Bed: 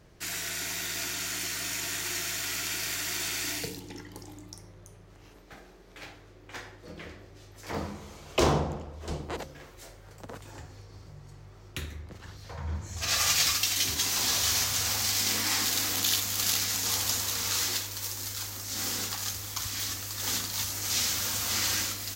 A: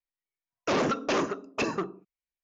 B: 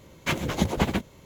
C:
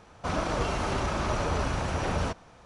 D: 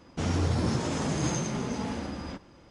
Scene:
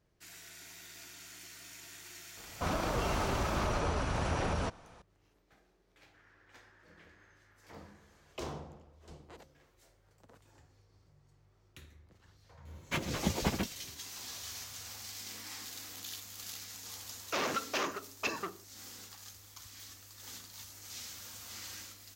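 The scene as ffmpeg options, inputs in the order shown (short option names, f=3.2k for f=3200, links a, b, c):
-filter_complex "[0:a]volume=-17.5dB[a];[3:a]alimiter=limit=-20.5dB:level=0:latency=1:release=90[b];[4:a]bandpass=f=1.7k:t=q:w=6.3:csg=0[c];[1:a]tiltshelf=f=680:g=-6.5[d];[b]atrim=end=2.65,asetpts=PTS-STARTPTS,volume=-2.5dB,afade=t=in:d=0.004:c=hsin,afade=t=out:st=2.646:d=0.004:c=hsin,adelay=2370[e];[c]atrim=end=2.7,asetpts=PTS-STARTPTS,volume=-16dB,afade=t=in:d=0.004:c=hsin,afade=t=out:st=2.696:d=0.004:c=hsin,adelay=5960[f];[2:a]atrim=end=1.25,asetpts=PTS-STARTPTS,volume=-8dB,afade=t=in:d=0.004:c=hsin,afade=t=out:st=1.246:d=0.004:c=hsin,adelay=12650[g];[d]atrim=end=2.43,asetpts=PTS-STARTPTS,volume=-8.5dB,afade=t=in:d=0.004:c=hsin,afade=t=out:st=2.426:d=0.004:c=hsin,adelay=16650[h];[a][e][f][g][h]amix=inputs=5:normalize=0"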